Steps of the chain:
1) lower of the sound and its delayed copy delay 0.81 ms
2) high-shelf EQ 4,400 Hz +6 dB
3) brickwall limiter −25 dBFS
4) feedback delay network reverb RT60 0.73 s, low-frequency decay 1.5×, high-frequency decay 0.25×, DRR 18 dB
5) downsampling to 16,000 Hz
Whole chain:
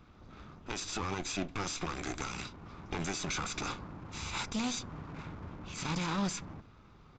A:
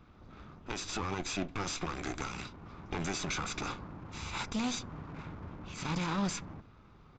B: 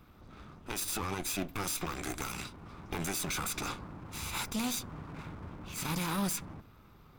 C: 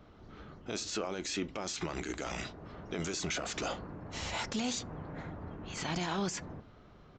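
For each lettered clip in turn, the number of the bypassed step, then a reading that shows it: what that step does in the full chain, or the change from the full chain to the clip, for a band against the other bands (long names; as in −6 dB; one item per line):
2, 8 kHz band −2.0 dB
5, 8 kHz band +3.5 dB
1, 500 Hz band +4.5 dB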